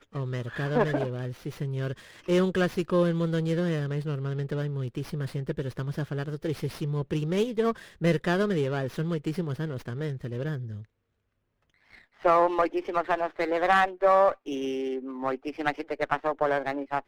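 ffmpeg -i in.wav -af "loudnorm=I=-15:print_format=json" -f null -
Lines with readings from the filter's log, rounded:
"input_i" : "-28.2",
"input_tp" : "-10.0",
"input_lra" : "4.5",
"input_thresh" : "-38.4",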